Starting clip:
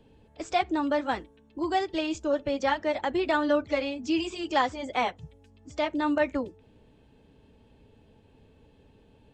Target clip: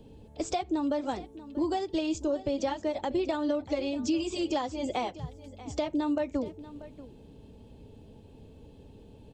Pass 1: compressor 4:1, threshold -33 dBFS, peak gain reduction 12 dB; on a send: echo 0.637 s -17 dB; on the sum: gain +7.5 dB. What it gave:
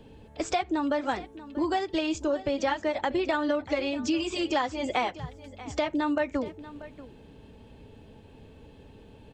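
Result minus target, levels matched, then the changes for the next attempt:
2000 Hz band +7.5 dB
add after compressor: bell 1700 Hz -12 dB 1.6 oct

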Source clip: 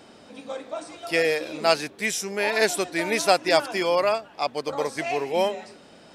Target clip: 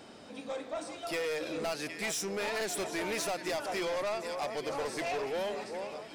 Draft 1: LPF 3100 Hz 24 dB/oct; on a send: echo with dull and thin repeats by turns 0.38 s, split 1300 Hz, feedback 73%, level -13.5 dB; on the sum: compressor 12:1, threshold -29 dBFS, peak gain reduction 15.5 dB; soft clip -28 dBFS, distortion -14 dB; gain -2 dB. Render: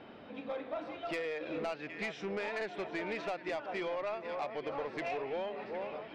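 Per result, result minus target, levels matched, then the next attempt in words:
compressor: peak gain reduction +7 dB; 4000 Hz band -5.5 dB
LPF 3100 Hz 24 dB/oct; on a send: echo with dull and thin repeats by turns 0.38 s, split 1300 Hz, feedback 73%, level -13.5 dB; on the sum: compressor 12:1, threshold -21 dBFS, peak gain reduction 8.5 dB; soft clip -28 dBFS, distortion -8 dB; gain -2 dB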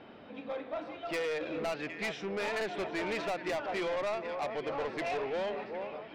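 4000 Hz band -3.5 dB
on a send: echo with dull and thin repeats by turns 0.38 s, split 1300 Hz, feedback 73%, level -13.5 dB; on the sum: compressor 12:1, threshold -21 dBFS, peak gain reduction 8.5 dB; soft clip -28 dBFS, distortion -8 dB; gain -2 dB

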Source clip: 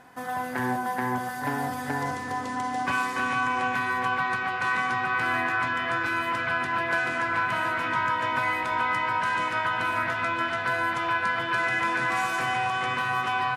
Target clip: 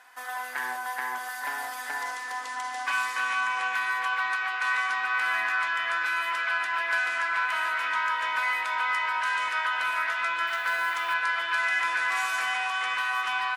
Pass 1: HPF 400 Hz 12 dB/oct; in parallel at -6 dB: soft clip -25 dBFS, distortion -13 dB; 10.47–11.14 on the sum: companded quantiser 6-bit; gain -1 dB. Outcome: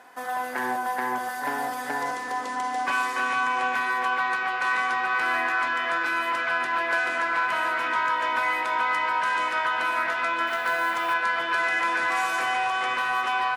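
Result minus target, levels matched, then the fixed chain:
500 Hz band +9.0 dB
HPF 1200 Hz 12 dB/oct; in parallel at -6 dB: soft clip -25 dBFS, distortion -16 dB; 10.47–11.14 on the sum: companded quantiser 6-bit; gain -1 dB

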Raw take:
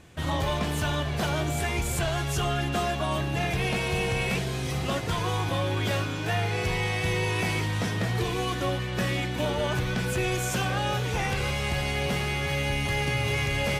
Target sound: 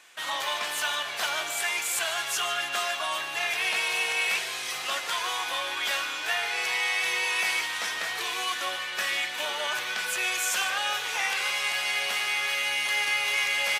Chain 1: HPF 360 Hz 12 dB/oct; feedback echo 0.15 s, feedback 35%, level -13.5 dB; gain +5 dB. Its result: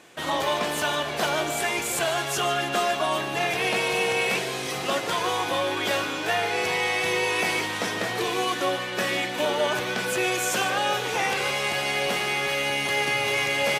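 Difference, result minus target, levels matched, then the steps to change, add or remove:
500 Hz band +11.0 dB
change: HPF 1200 Hz 12 dB/oct

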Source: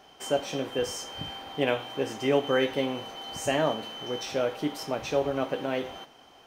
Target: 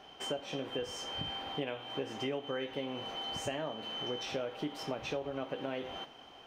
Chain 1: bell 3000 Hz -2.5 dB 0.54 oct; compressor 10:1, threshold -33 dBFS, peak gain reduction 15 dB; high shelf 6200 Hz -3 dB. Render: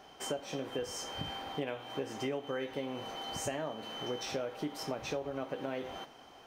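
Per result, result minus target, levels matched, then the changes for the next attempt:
8000 Hz band +5.5 dB; 4000 Hz band -3.5 dB
change: high shelf 6200 Hz -12 dB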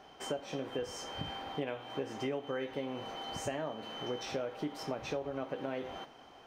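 4000 Hz band -4.5 dB
change: bell 3000 Hz +4.5 dB 0.54 oct

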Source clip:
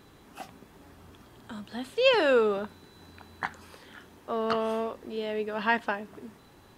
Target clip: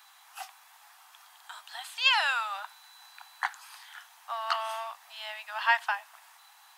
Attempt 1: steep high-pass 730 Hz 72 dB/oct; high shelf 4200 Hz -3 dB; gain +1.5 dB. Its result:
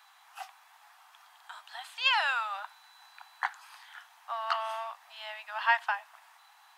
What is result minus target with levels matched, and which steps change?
8000 Hz band -6.0 dB
change: high shelf 4200 Hz +6.5 dB

